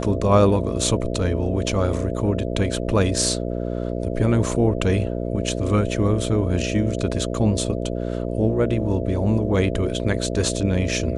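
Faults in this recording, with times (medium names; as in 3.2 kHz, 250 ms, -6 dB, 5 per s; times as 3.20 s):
buzz 60 Hz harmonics 11 -26 dBFS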